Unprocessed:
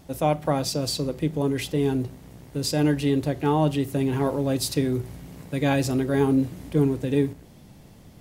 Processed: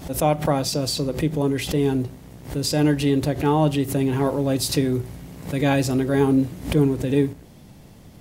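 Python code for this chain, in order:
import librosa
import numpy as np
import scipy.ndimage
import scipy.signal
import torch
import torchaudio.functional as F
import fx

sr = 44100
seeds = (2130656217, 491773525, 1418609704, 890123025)

y = fx.pre_swell(x, sr, db_per_s=140.0)
y = y * 10.0 ** (2.5 / 20.0)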